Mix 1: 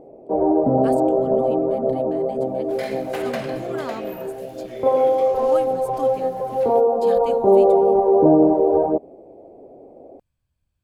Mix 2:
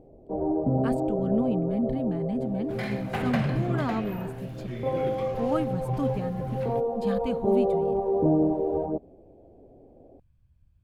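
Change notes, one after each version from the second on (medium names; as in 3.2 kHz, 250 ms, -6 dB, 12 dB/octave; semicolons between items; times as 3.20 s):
first sound -12.0 dB; master: add tone controls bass +13 dB, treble -9 dB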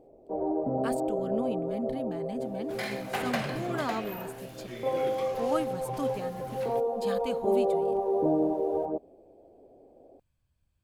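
master: add tone controls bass -13 dB, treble +9 dB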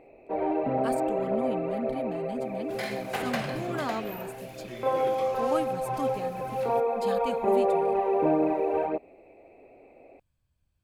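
first sound: remove Bessel low-pass 610 Hz, order 4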